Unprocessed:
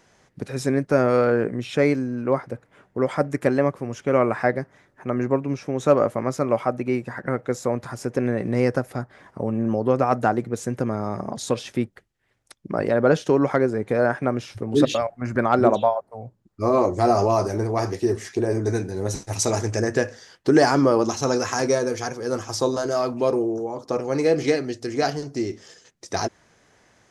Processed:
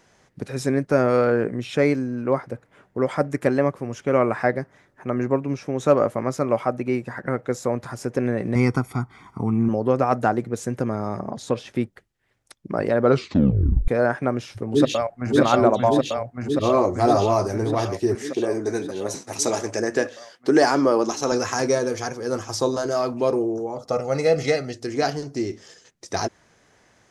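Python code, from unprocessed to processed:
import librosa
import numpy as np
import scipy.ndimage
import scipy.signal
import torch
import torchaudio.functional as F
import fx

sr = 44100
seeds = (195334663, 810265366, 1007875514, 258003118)

y = fx.comb(x, sr, ms=0.9, depth=0.92, at=(8.55, 9.69))
y = fx.high_shelf(y, sr, hz=3600.0, db=-9.5, at=(11.19, 11.76))
y = fx.echo_throw(y, sr, start_s=14.68, length_s=0.64, ms=580, feedback_pct=75, wet_db=-0.5)
y = fx.highpass(y, sr, hz=220.0, slope=12, at=(18.15, 21.32))
y = fx.comb(y, sr, ms=1.5, depth=0.64, at=(23.76, 24.74))
y = fx.edit(y, sr, fx.tape_stop(start_s=13.03, length_s=0.85), tone=tone)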